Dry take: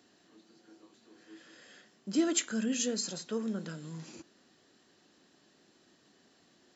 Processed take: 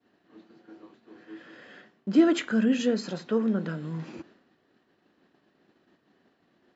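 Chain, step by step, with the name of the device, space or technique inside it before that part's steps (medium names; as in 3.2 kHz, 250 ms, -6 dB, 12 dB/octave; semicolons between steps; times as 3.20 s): hearing-loss simulation (low-pass 2.3 kHz 12 dB/octave; expander -59 dBFS); trim +9 dB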